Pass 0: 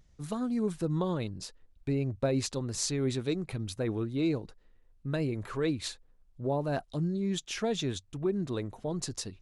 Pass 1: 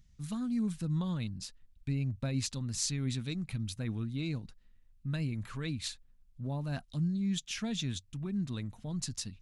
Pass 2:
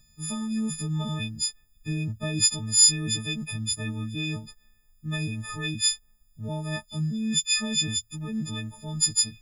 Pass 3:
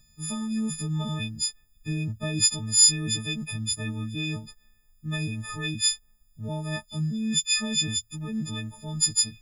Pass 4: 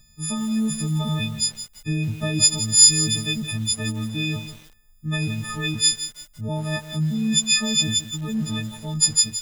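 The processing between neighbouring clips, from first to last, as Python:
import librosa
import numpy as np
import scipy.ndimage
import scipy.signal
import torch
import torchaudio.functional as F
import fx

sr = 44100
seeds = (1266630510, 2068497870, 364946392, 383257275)

y1 = fx.curve_eq(x, sr, hz=(230.0, 380.0, 2600.0), db=(0, -17, -1))
y2 = fx.freq_snap(y1, sr, grid_st=6)
y2 = y2 * 10.0 ** (3.5 / 20.0)
y3 = y2
y4 = fx.echo_crushed(y3, sr, ms=169, feedback_pct=35, bits=7, wet_db=-11.0)
y4 = y4 * 10.0 ** (5.0 / 20.0)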